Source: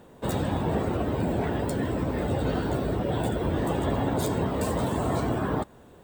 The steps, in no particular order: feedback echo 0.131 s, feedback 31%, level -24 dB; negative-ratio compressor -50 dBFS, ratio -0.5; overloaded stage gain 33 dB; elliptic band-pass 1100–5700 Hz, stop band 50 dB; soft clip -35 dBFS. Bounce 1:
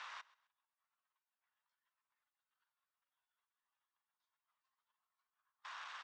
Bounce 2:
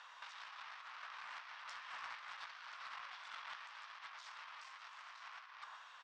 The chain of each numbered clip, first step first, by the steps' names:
negative-ratio compressor > overloaded stage > feedback echo > soft clip > elliptic band-pass; feedback echo > overloaded stage > elliptic band-pass > negative-ratio compressor > soft clip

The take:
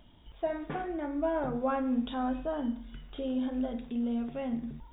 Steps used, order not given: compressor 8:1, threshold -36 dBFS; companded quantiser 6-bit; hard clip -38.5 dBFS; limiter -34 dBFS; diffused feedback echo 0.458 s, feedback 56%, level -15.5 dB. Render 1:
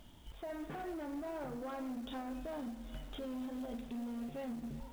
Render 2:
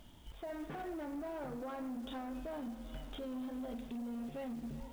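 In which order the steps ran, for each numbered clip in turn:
compressor > limiter > hard clip > diffused feedback echo > companded quantiser; compressor > diffused feedback echo > companded quantiser > limiter > hard clip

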